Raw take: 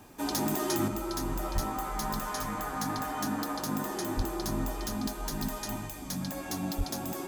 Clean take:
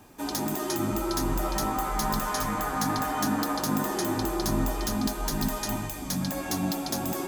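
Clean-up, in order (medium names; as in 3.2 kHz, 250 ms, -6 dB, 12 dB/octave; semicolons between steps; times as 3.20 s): clip repair -22 dBFS; 0.88 s: gain correction +5.5 dB; 1.54–1.66 s: high-pass 140 Hz 24 dB/octave; 4.16–4.28 s: high-pass 140 Hz 24 dB/octave; 6.77–6.89 s: high-pass 140 Hz 24 dB/octave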